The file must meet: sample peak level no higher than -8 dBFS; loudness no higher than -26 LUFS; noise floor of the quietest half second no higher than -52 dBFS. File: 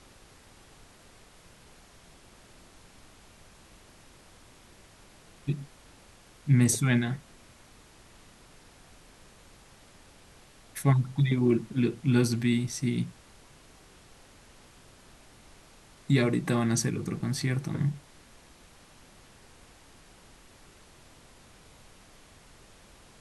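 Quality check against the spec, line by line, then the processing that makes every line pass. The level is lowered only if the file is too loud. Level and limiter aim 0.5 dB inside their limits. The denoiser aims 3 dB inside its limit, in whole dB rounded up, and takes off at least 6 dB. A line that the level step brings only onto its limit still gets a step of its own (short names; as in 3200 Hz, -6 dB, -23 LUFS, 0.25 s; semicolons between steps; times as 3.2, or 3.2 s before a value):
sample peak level -11.0 dBFS: OK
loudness -27.5 LUFS: OK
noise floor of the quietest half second -55 dBFS: OK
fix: none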